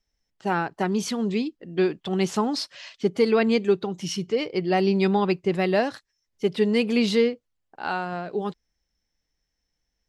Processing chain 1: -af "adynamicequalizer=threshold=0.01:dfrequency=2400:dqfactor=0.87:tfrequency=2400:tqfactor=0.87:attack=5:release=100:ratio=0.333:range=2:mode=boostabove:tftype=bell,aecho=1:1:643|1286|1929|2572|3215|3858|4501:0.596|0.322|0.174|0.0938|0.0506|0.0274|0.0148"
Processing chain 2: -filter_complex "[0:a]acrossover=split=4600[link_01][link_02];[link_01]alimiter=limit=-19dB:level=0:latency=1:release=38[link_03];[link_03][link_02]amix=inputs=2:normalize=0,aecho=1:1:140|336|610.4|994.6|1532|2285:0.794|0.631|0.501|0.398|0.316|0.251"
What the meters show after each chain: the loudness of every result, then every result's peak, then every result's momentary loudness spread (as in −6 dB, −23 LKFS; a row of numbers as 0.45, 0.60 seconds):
−23.0, −25.0 LKFS; −8.0, −11.5 dBFS; 11, 10 LU